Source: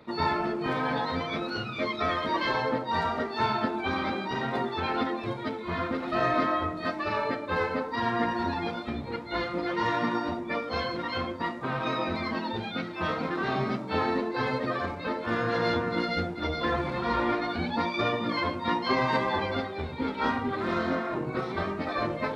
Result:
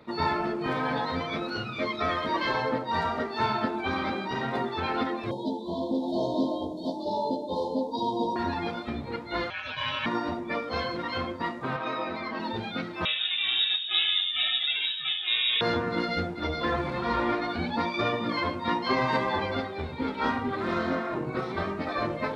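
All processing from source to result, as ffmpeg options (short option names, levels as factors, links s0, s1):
-filter_complex "[0:a]asettb=1/sr,asplit=3[s0][s1][s2];[s0]atrim=end=5.314[s3];[s1]atrim=start=5.31:end=8.36,asetpts=PTS-STARTPTS,afade=t=in:d=0.004:c=qsin,afade=t=out:st=3.046:d=0.004:c=qsin,asuperstop=centerf=1800:order=20:qfactor=0.78,lowshelf=f=150:t=q:w=1.5:g=-8,asplit=2[s4][s5];[s5]adelay=15,volume=0.596[s6];[s4][s6]amix=inputs=2:normalize=0,atrim=end_sample=134505[s7];[s2]atrim=start=8.356[s8];[s3][s7]acrossfade=d=0.004:c1=hsin:c2=qsin[s9];[s9][s8]acrossfade=d=0.004:c1=qsin:c2=hsin,asettb=1/sr,asplit=3[s10][s11][s12];[s10]atrim=end=9.504[s13];[s11]atrim=start=9.5:end=10.06,asetpts=PTS-STARTPTS,afade=t=in:d=0.004:c=qsin,afade=t=out:st=0.556:d=0.004:c=qsin,lowpass=2000,bandreject=f=50:t=h:w=6,bandreject=f=100:t=h:w=6,bandreject=f=150:t=h:w=6,bandreject=f=200:t=h:w=6,bandreject=f=250:t=h:w=6,bandreject=f=300:t=h:w=6,bandreject=f=350:t=h:w=6,bandreject=f=400:t=h:w=6,bandreject=f=450:t=h:w=6,bandreject=f=500:t=h:w=6,aeval=exprs='val(0)*sin(2*PI*2000*n/s)':c=same[s14];[s12]atrim=start=10.056[s15];[s13][s14]acrossfade=d=0.004:c1=hsin:c2=qsin[s16];[s16][s15]acrossfade=d=0.004:c1=qsin:c2=hsin,asettb=1/sr,asplit=3[s17][s18][s19];[s17]atrim=end=11.764[s20];[s18]atrim=start=11.76:end=12.4,asetpts=PTS-STARTPTS,afade=t=in:d=0.004:c=qsin,afade=t=out:st=0.636:d=0.004:c=qsin,highpass=f=370:p=1,highshelf=f=4800:g=-10.5[s21];[s19]atrim=start=12.396[s22];[s20][s21]acrossfade=d=0.004:c1=hsin:c2=qsin[s23];[s23][s22]acrossfade=d=0.004:c1=qsin:c2=hsin,asettb=1/sr,asplit=3[s24][s25][s26];[s24]atrim=end=13.054[s27];[s25]atrim=start=13.05:end=15.61,asetpts=PTS-STARTPTS,afade=t=in:d=0.004:c=qsin,afade=t=out:st=2.556:d=0.004:c=qsin,lowshelf=f=140:g=10.5,lowpass=f=3300:t=q:w=0.5098,lowpass=f=3300:t=q:w=0.6013,lowpass=f=3300:t=q:w=0.9,lowpass=f=3300:t=q:w=2.563,afreqshift=-3900[s28];[s26]atrim=start=15.606[s29];[s27][s28]acrossfade=d=0.004:c1=hsin:c2=qsin[s30];[s30][s29]acrossfade=d=0.004:c1=qsin:c2=hsin"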